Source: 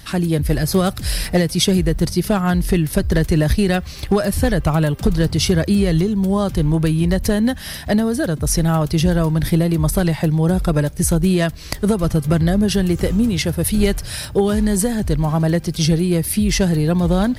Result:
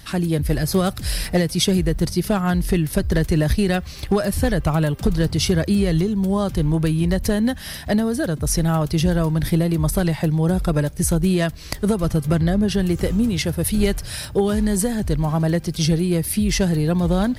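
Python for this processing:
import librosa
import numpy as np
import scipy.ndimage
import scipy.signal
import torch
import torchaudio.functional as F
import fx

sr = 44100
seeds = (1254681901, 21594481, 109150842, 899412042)

y = fx.high_shelf(x, sr, hz=fx.line((12.35, 10000.0), (12.78, 5200.0)), db=-7.5, at=(12.35, 12.78), fade=0.02)
y = y * 10.0 ** (-2.5 / 20.0)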